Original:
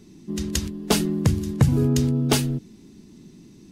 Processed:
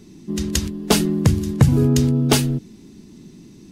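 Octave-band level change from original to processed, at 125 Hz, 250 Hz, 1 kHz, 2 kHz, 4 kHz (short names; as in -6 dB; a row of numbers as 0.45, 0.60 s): +4.0, +4.0, +4.0, +4.0, +4.0 dB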